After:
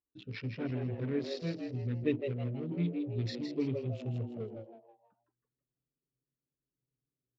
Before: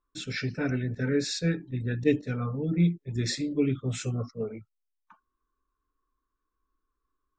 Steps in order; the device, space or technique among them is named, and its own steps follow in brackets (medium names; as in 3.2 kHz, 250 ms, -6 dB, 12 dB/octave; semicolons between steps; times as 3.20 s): local Wiener filter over 41 samples; frequency-shifting delay pedal into a guitar cabinet (frequency-shifting echo 161 ms, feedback 36%, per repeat +120 Hz, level -6.5 dB; cabinet simulation 92–4500 Hz, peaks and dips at 110 Hz +7 dB, 160 Hz -4 dB, 1.6 kHz -6 dB, 3 kHz +4 dB); 1.35–3.06 s: peaking EQ 770 Hz -6 dB 0.44 oct; trim -7 dB